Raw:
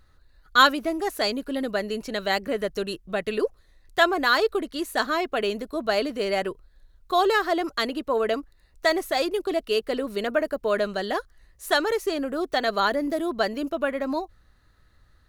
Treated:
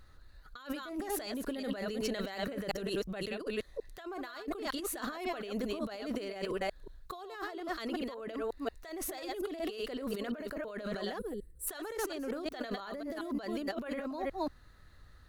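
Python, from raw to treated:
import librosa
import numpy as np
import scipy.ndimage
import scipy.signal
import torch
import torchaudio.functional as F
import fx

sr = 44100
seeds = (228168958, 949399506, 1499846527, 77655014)

y = fx.reverse_delay(x, sr, ms=181, wet_db=-8.0)
y = fx.over_compress(y, sr, threshold_db=-33.0, ratio=-1.0)
y = fx.spec_box(y, sr, start_s=11.19, length_s=0.48, low_hz=520.0, high_hz=7400.0, gain_db=-21)
y = y * 10.0 ** (-6.0 / 20.0)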